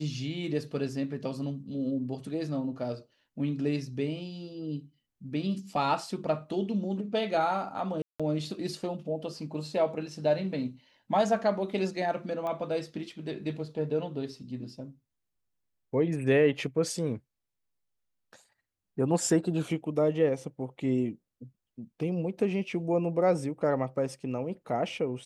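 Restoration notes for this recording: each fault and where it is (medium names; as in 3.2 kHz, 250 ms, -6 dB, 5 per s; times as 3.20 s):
8.02–8.20 s: dropout 176 ms
12.47 s: pop -24 dBFS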